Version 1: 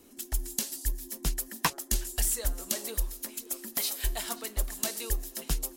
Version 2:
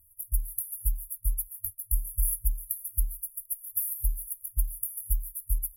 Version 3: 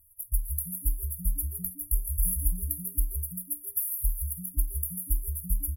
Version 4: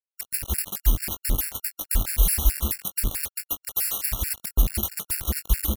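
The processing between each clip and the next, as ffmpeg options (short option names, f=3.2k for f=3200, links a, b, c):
-af "afftfilt=real='re*(1-between(b*sr/4096,100,10000))':imag='im*(1-between(b*sr/4096,100,10000))':win_size=4096:overlap=0.75,volume=3.5dB"
-filter_complex "[0:a]asplit=5[a][b][c][d][e];[b]adelay=163,afreqshift=-110,volume=-7.5dB[f];[c]adelay=326,afreqshift=-220,volume=-17.1dB[g];[d]adelay=489,afreqshift=-330,volume=-26.8dB[h];[e]adelay=652,afreqshift=-440,volume=-36.4dB[i];[a][f][g][h][i]amix=inputs=5:normalize=0"
-filter_complex "[0:a]acrusher=bits=4:mix=0:aa=0.000001,asplit=2[a][b];[b]adelay=20,volume=-9dB[c];[a][c]amix=inputs=2:normalize=0,afftfilt=real='re*gt(sin(2*PI*4.6*pts/sr)*(1-2*mod(floor(b*sr/1024/1400),2)),0)':imag='im*gt(sin(2*PI*4.6*pts/sr)*(1-2*mod(floor(b*sr/1024/1400),2)),0)':win_size=1024:overlap=0.75,volume=6.5dB"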